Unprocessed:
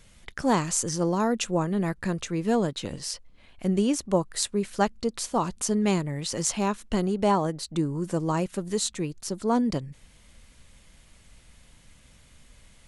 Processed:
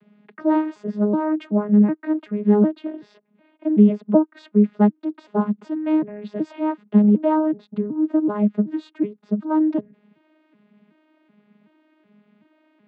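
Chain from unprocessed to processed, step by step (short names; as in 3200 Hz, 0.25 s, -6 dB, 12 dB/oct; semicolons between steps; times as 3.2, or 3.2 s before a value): arpeggiated vocoder bare fifth, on G#3, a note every 0.376 s; air absorption 470 m; gain +8.5 dB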